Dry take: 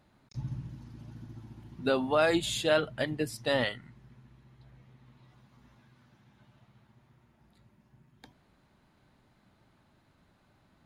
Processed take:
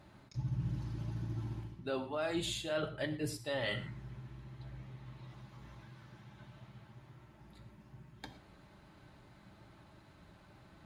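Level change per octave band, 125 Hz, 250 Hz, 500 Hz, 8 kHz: +1.5 dB, -6.5 dB, -9.5 dB, -6.0 dB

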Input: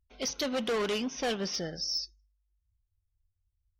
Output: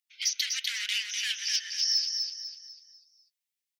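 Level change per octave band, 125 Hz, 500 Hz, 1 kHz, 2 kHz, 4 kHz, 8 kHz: under -40 dB, under -40 dB, under -20 dB, +5.5 dB, +8.0 dB, +8.0 dB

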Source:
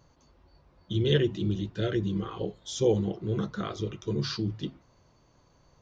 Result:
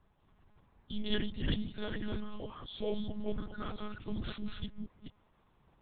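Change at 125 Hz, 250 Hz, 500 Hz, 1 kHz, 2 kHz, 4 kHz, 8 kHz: -13.0 dB, -8.0 dB, -12.0 dB, -6.5 dB, -4.5 dB, -6.0 dB, no reading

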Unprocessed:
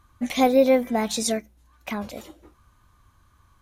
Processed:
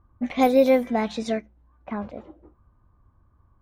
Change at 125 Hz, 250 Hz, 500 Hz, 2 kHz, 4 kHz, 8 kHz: 0.0 dB, 0.0 dB, 0.0 dB, -1.0 dB, -6.5 dB, -15.5 dB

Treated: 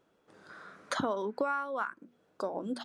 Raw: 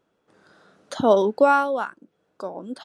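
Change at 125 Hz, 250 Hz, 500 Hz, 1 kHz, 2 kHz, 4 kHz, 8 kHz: -9.5 dB, -10.5 dB, -14.5 dB, -12.5 dB, -7.5 dB, -6.0 dB, no reading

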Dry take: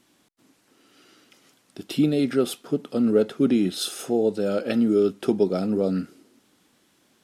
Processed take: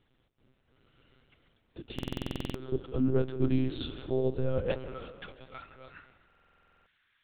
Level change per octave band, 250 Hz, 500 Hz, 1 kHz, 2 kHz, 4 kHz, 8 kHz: -12.0 dB, -11.0 dB, -8.5 dB, -7.5 dB, -10.5 dB, under -20 dB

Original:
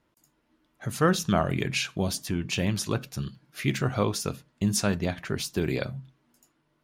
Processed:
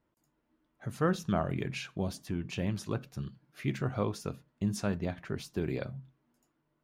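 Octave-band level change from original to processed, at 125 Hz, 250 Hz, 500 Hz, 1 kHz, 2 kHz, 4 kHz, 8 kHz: -5.5 dB, -5.5 dB, -6.0 dB, -7.0 dB, -9.5 dB, -12.5 dB, -14.5 dB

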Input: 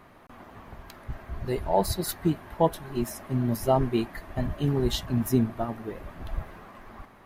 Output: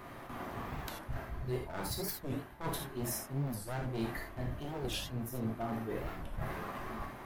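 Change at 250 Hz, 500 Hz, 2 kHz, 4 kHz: -11.5 dB, -12.5 dB, -1.5 dB, -6.5 dB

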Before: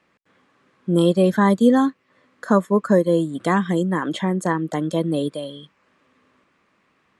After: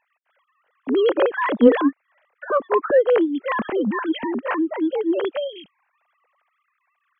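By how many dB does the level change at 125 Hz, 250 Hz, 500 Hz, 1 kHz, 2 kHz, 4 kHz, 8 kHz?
under -15 dB, -3.0 dB, +2.0 dB, -1.0 dB, +1.5 dB, -1.5 dB, under -40 dB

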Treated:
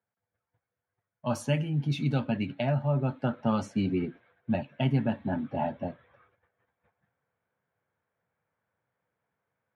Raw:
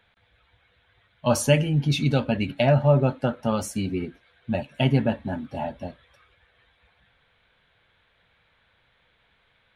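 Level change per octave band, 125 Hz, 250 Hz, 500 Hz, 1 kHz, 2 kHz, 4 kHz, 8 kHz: -6.0 dB, -3.5 dB, -9.0 dB, -5.0 dB, -8.0 dB, -10.0 dB, under -10 dB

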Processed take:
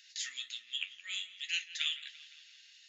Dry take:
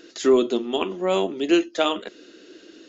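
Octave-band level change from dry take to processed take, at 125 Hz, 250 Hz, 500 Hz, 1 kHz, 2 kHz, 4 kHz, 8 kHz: under -40 dB, under -40 dB, under -40 dB, -36.0 dB, -6.5 dB, -4.5 dB, no reading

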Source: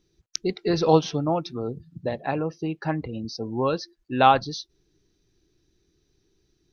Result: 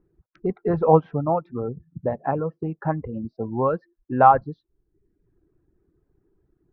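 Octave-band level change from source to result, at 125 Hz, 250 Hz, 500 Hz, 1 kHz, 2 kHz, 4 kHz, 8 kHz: +2.5 dB, -0.5 dB, +2.0 dB, +3.0 dB, -3.5 dB, under -25 dB, no reading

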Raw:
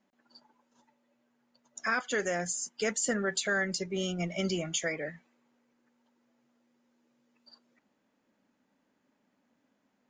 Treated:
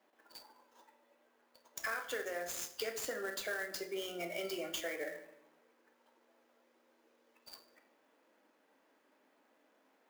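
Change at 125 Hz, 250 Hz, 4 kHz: -22.5 dB, -13.5 dB, -6.0 dB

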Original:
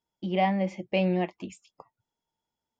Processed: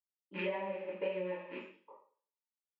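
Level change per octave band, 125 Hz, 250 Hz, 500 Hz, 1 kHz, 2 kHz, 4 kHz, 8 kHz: under -15 dB, -17.0 dB, -7.0 dB, -15.5 dB, -7.5 dB, -12.0 dB, no reading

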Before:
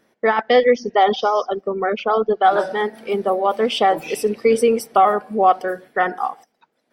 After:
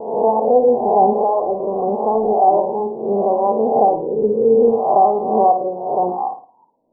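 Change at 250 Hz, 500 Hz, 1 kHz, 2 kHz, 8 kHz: +3.0 dB, +3.0 dB, +2.5 dB, under -40 dB, under -40 dB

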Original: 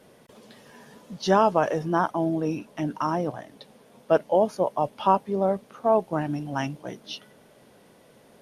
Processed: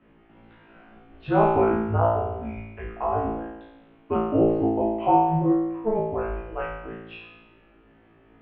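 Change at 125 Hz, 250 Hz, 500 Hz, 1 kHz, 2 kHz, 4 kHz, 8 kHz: +4.0 dB, +3.0 dB, 0.0 dB, +0.5 dB, -2.5 dB, under -10 dB, no reading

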